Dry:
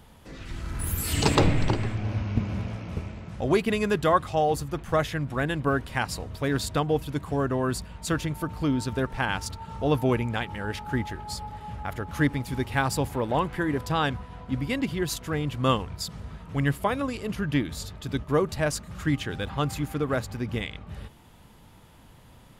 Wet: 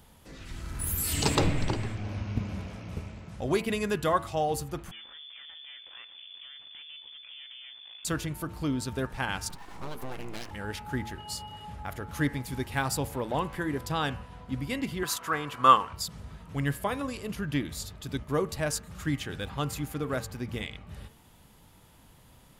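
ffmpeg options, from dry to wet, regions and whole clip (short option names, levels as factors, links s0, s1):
-filter_complex "[0:a]asettb=1/sr,asplit=3[s0][s1][s2];[s0]atrim=end=4.914[s3];[s1]atrim=start=4.91:end=8.05,asetpts=PTS-STARTPTS,afade=t=in:d=0.004:c=qsin,afade=t=out:st=3.136:d=0.004:c=qsin,acompressor=threshold=0.0141:ratio=6:attack=3.2:release=140:knee=1:detection=peak,aeval=exprs='max(val(0),0)':c=same,lowpass=f=3000:t=q:w=0.5098,lowpass=f=3000:t=q:w=0.6013,lowpass=f=3000:t=q:w=0.9,lowpass=f=3000:t=q:w=2.563,afreqshift=-3500[s4];[s2]atrim=start=8.046[s5];[s3][s4]acrossfade=d=0.004:c1=hsin:c2=qsin[s6];[s6][s5]acrossfade=d=0.004:c1=qsin:c2=hsin,asettb=1/sr,asplit=3[s7][s8][s9];[s7]atrim=end=9.494[s10];[s8]atrim=start=9.49:end=10.51,asetpts=PTS-STARTPTS,afade=t=in:d=0.004:c=qsin,afade=t=out:st=1.016:d=0.004:c=qsin,acompressor=threshold=0.0501:ratio=6:attack=3.2:release=140:knee=1:detection=peak,aeval=exprs='abs(val(0))':c=same[s11];[s9]atrim=start=10.506[s12];[s10][s11]acrossfade=d=0.004:c1=hsin:c2=qsin[s13];[s13][s12]acrossfade=d=0.004:c1=qsin:c2=hsin,asettb=1/sr,asplit=3[s14][s15][s16];[s14]atrim=end=11.184[s17];[s15]atrim=start=11.18:end=11.65,asetpts=PTS-STARTPTS,afade=t=in:d=0.004:c=qsin,afade=t=out:st=0.466:d=0.004:c=qsin,highpass=80,aeval=exprs='val(0)+0.00501*sin(2*PI*2900*n/s)':c=same,asplit=2[s18][s19];[s19]adelay=28,volume=0.224[s20];[s18][s20]amix=inputs=2:normalize=0,atrim=end_sample=20727[s21];[s16]atrim=start=11.646[s22];[s17][s21]acrossfade=d=0.004:c1=hsin:c2=qsin[s23];[s23][s22]acrossfade=d=0.004:c1=qsin:c2=hsin,asettb=1/sr,asplit=3[s24][s25][s26];[s24]atrim=end=15.034[s27];[s25]atrim=start=15.03:end=15.93,asetpts=PTS-STARTPTS,afade=t=in:d=0.004:c=qsin,afade=t=out:st=0.896:d=0.004:c=qsin,highpass=f=320:p=1,equalizer=f=1200:w=1.2:g=15[s28];[s26]atrim=start=15.926[s29];[s27][s28]acrossfade=d=0.004:c1=hsin:c2=qsin[s30];[s30][s29]acrossfade=d=0.004:c1=qsin:c2=hsin,highshelf=f=5400:g=7.5,bandreject=f=112.7:t=h:w=4,bandreject=f=225.4:t=h:w=4,bandreject=f=338.1:t=h:w=4,bandreject=f=450.8:t=h:w=4,bandreject=f=563.5:t=h:w=4,bandreject=f=676.2:t=h:w=4,bandreject=f=788.9:t=h:w=4,bandreject=f=901.6:t=h:w=4,bandreject=f=1014.3:t=h:w=4,bandreject=f=1127:t=h:w=4,bandreject=f=1239.7:t=h:w=4,bandreject=f=1352.4:t=h:w=4,bandreject=f=1465.1:t=h:w=4,bandreject=f=1577.8:t=h:w=4,bandreject=f=1690.5:t=h:w=4,bandreject=f=1803.2:t=h:w=4,bandreject=f=1915.9:t=h:w=4,bandreject=f=2028.6:t=h:w=4,bandreject=f=2141.3:t=h:w=4,bandreject=f=2254:t=h:w=4,bandreject=f=2366.7:t=h:w=4,bandreject=f=2479.4:t=h:w=4,bandreject=f=2592.1:t=h:w=4,bandreject=f=2704.8:t=h:w=4,bandreject=f=2817.5:t=h:w=4,bandreject=f=2930.2:t=h:w=4,bandreject=f=3042.9:t=h:w=4,volume=0.596"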